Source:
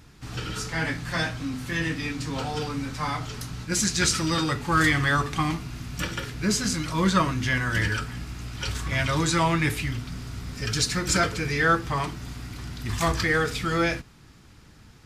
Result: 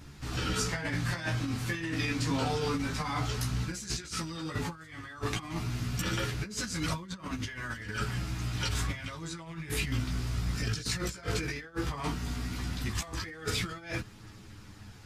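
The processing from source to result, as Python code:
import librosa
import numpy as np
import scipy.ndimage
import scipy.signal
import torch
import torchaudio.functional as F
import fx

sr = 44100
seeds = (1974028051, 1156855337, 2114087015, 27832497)

y = fx.over_compress(x, sr, threshold_db=-30.0, ratio=-0.5)
y = fx.chorus_voices(y, sr, voices=2, hz=0.14, base_ms=14, depth_ms=4.7, mix_pct=45)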